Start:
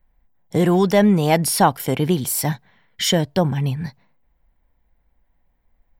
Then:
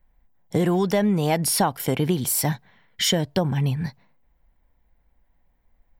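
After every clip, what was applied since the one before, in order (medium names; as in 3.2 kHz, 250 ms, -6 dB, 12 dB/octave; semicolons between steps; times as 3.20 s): compression 6:1, threshold -17 dBFS, peak gain reduction 8 dB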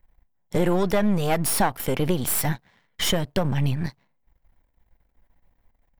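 partial rectifier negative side -12 dB; dynamic bell 5.2 kHz, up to -5 dB, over -44 dBFS, Q 1.1; trim +3.5 dB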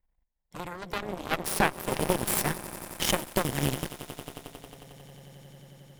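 echo with a slow build-up 90 ms, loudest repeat 8, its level -13 dB; Chebyshev shaper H 3 -8 dB, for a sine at -5.5 dBFS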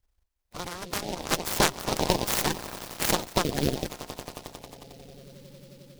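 coarse spectral quantiser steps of 30 dB; delay time shaken by noise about 3.7 kHz, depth 0.11 ms; trim +2.5 dB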